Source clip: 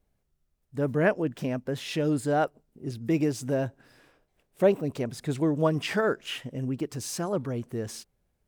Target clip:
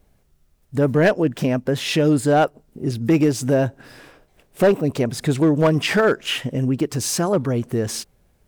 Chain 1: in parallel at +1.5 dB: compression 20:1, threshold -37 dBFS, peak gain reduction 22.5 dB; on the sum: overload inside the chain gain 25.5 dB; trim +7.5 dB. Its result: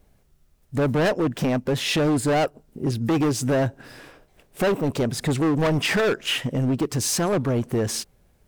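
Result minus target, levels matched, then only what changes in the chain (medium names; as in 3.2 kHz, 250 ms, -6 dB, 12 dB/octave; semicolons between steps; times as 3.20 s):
overload inside the chain: distortion +9 dB
change: overload inside the chain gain 17.5 dB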